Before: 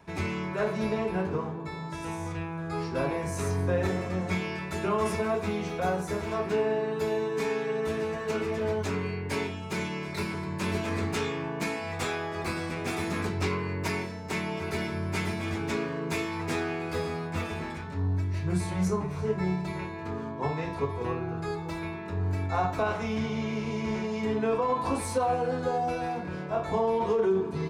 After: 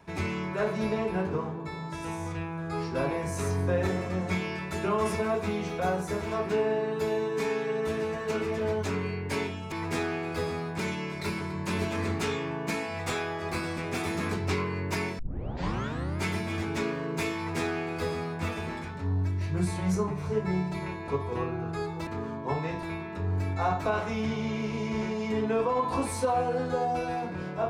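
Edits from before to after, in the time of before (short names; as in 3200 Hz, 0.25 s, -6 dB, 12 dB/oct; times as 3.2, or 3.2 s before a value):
14.12 tape start 1.04 s
16.29–17.36 copy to 9.72
20.01–20.77 move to 21.76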